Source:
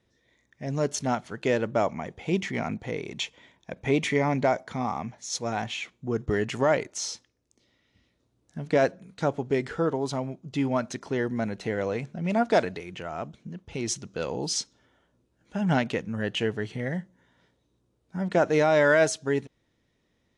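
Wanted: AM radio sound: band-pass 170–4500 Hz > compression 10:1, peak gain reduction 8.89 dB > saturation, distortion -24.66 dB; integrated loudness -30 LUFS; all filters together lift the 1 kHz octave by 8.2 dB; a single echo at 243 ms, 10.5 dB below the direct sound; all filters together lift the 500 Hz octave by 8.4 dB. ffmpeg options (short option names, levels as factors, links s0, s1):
-af "highpass=170,lowpass=4500,equalizer=f=500:t=o:g=8,equalizer=f=1000:t=o:g=8,aecho=1:1:243:0.299,acompressor=threshold=0.158:ratio=10,asoftclip=threshold=0.335,volume=0.596"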